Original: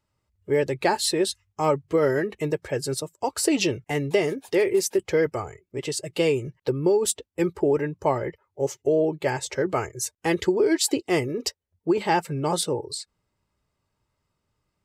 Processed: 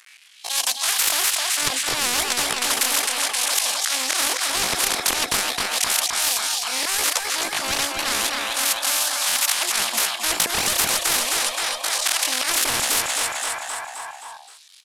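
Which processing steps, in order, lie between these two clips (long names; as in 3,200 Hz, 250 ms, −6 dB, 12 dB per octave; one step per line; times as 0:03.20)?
variable-slope delta modulation 32 kbit/s
in parallel at +1.5 dB: brickwall limiter −18.5 dBFS, peak gain reduction 9 dB
on the sum: auto-filter high-pass sine 0.36 Hz 400–2,100 Hz
volume swells 134 ms
soft clipping −12.5 dBFS, distortion −10 dB
pitch shifter +11 semitones
on a send: repeating echo 262 ms, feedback 52%, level −10 dB
on the sum: every bin compressed towards the loudest bin 10 to 1
level +6 dB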